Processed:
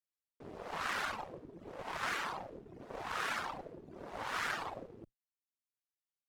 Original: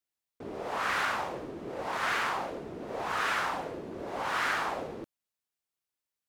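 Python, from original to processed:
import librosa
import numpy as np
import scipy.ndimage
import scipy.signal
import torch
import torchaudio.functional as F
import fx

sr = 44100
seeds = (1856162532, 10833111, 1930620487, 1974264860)

y = fx.octave_divider(x, sr, octaves=1, level_db=-6.0)
y = fx.cheby_harmonics(y, sr, harmonics=(7, 8), levels_db=(-24, -23), full_scale_db=-17.0)
y = fx.dereverb_blind(y, sr, rt60_s=0.79)
y = F.gain(torch.from_numpy(y), -5.0).numpy()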